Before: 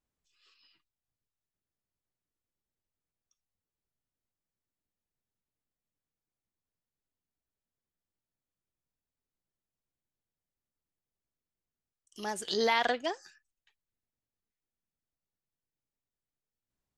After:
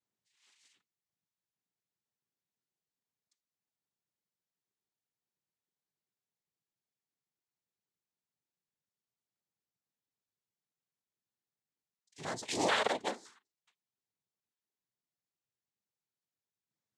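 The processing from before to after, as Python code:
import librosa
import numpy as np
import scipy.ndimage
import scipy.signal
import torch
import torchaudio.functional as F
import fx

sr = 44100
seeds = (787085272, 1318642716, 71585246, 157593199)

y = fx.hum_notches(x, sr, base_hz=60, count=7)
y = fx.noise_vocoder(y, sr, seeds[0], bands=6)
y = y * librosa.db_to_amplitude(-2.5)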